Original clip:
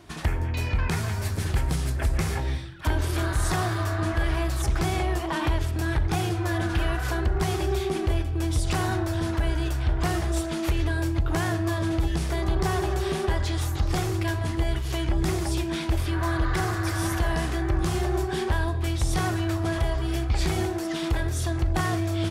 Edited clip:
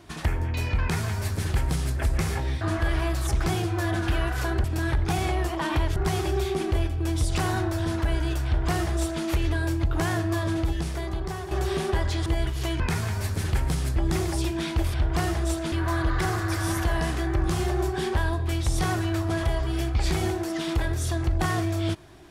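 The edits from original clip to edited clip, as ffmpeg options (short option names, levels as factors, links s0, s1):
-filter_complex "[0:a]asplit=12[s0][s1][s2][s3][s4][s5][s6][s7][s8][s9][s10][s11];[s0]atrim=end=2.612[s12];[s1]atrim=start=3.958:end=4.892[s13];[s2]atrim=start=6.208:end=7.312[s14];[s3]atrim=start=5.668:end=6.212[s15];[s4]atrim=start=4.888:end=5.672[s16];[s5]atrim=start=7.308:end=12.86,asetpts=PTS-STARTPTS,afade=t=out:st=4.512:d=1.04:silence=0.298538[s17];[s6]atrim=start=12.86:end=13.612,asetpts=PTS-STARTPTS,afade=t=in:d=0.004:c=hsin:silence=0.298538[s18];[s7]atrim=start=14.548:end=15.092[s19];[s8]atrim=start=0.808:end=1.972[s20];[s9]atrim=start=15.088:end=16.072[s21];[s10]atrim=start=9.808:end=10.592[s22];[s11]atrim=start=16.068[s23];[s12][s13]acrossfade=d=0.004:c1=hsin:c2=hsin[s24];[s24][s14]acrossfade=d=0.004:c1=hsin:c2=hsin[s25];[s25][s15]acrossfade=d=0.004:c1=hsin:c2=hsin[s26];[s26][s16]acrossfade=d=0.004:c1=hsin:c2=hsin[s27];[s17][s18]concat=n=2:v=0:a=1[s28];[s27][s28]acrossfade=d=0.004:c1=hsin:c2=hsin[s29];[s29][s19]acrossfade=d=0.004:c1=hsin:c2=hsin[s30];[s30][s20]acrossfade=d=0.004:c1=hsin:c2=hsin[s31];[s31][s21]acrossfade=d=0.004:c1=hsin:c2=hsin[s32];[s32][s22]acrossfade=d=0.004:c1=hsin:c2=hsin[s33];[s33][s23]acrossfade=d=0.004:c1=hsin:c2=hsin"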